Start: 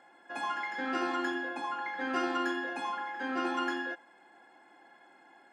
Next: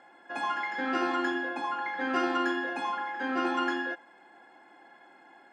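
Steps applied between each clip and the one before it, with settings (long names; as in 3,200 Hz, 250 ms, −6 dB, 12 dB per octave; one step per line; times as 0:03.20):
high-shelf EQ 8,300 Hz −10 dB
level +3.5 dB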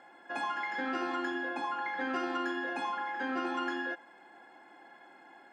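downward compressor 3 to 1, threshold −32 dBFS, peak gain reduction 7 dB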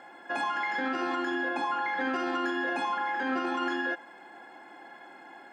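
brickwall limiter −28.5 dBFS, peak gain reduction 6.5 dB
level +6.5 dB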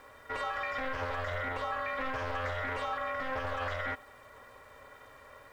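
bit reduction 10 bits
ring modulation 260 Hz
highs frequency-modulated by the lows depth 0.25 ms
level −1.5 dB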